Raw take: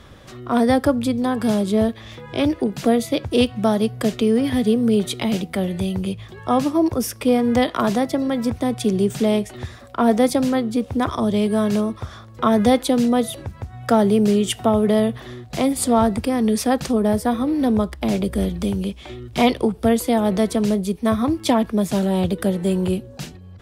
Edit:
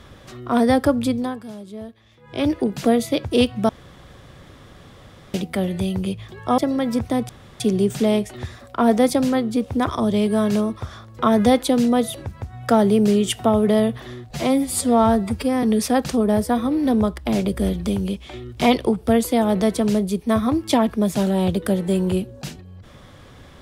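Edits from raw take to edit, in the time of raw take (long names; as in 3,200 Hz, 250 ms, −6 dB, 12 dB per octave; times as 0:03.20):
0:01.12–0:02.50: duck −16.5 dB, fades 0.31 s
0:03.69–0:05.34: fill with room tone
0:06.58–0:08.09: remove
0:08.80: splice in room tone 0.31 s
0:15.51–0:16.39: time-stretch 1.5×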